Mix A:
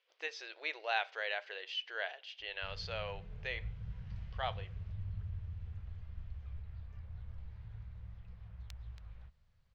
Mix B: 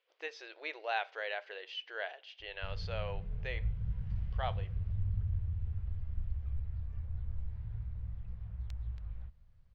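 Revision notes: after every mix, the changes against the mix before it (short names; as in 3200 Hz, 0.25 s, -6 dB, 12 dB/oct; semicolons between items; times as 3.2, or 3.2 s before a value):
master: add tilt -2 dB/oct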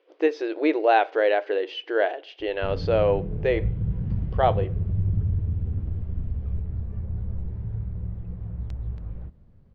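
speech +4.5 dB; master: remove passive tone stack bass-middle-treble 10-0-10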